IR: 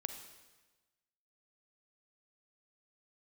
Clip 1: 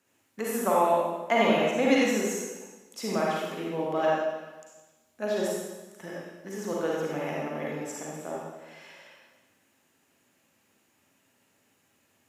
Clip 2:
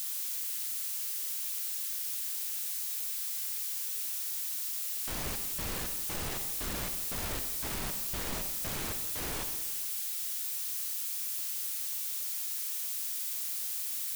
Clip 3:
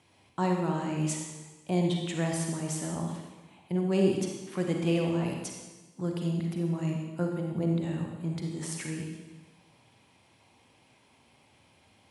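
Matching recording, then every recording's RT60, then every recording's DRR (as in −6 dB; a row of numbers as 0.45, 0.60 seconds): 2; 1.2, 1.2, 1.2 seconds; −5.0, 7.0, 1.0 decibels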